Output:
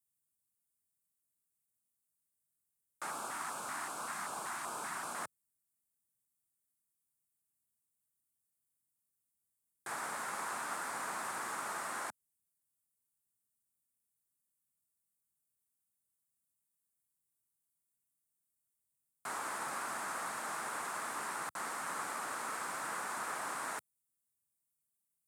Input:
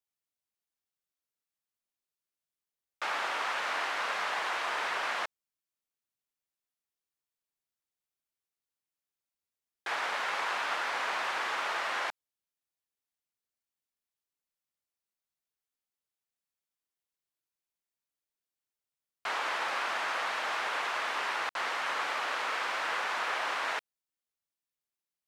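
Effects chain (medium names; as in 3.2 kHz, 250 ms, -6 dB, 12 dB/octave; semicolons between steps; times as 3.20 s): FFT filter 130 Hz 0 dB, 230 Hz -4 dB, 510 Hz -17 dB, 1.3 kHz -14 dB, 3 kHz -26 dB, 5.9 kHz -13 dB, 8.6 kHz +3 dB, 14 kHz -1 dB; 3.11–5.15 s: LFO notch square 2.6 Hz 490–1900 Hz; high-pass 84 Hz; trim +8.5 dB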